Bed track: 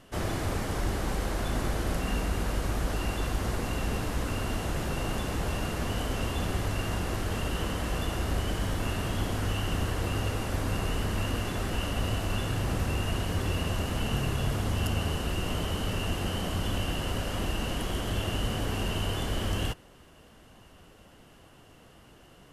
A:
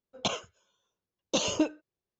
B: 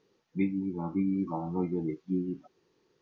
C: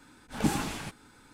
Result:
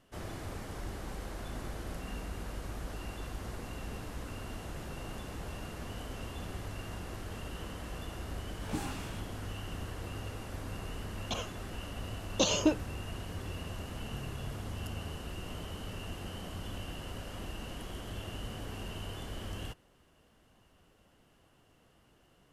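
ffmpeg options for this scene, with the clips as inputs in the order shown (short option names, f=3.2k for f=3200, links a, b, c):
-filter_complex "[0:a]volume=-11dB[a];[3:a]flanger=delay=16:depth=7.4:speed=2[b];[1:a]dynaudnorm=f=240:g=3:m=11.5dB[c];[b]atrim=end=1.33,asetpts=PTS-STARTPTS,volume=-6.5dB,afade=t=in:d=0.004:c=hsin,afade=t=out:st=1.326:d=0.004:c=hsin,adelay=8290[d];[c]atrim=end=2.19,asetpts=PTS-STARTPTS,volume=-11dB,afade=t=in:d=0.004:c=hsin,afade=t=out:st=2.186:d=0.004:c=hsin,adelay=487746S[e];[a][d][e]amix=inputs=3:normalize=0"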